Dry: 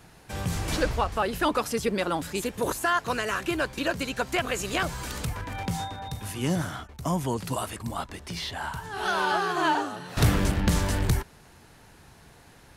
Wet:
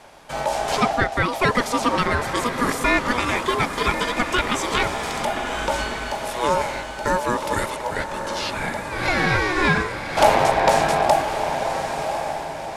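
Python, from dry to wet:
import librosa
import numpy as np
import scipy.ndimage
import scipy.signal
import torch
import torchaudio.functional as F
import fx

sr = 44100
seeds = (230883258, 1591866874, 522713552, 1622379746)

y = scipy.signal.sosfilt(scipy.signal.bessel(2, 8600.0, 'lowpass', norm='mag', fs=sr, output='sos'), x)
y = y * np.sin(2.0 * np.pi * 730.0 * np.arange(len(y)) / sr)
y = fx.echo_diffused(y, sr, ms=1106, feedback_pct=42, wet_db=-7.0)
y = y * librosa.db_to_amplitude(8.5)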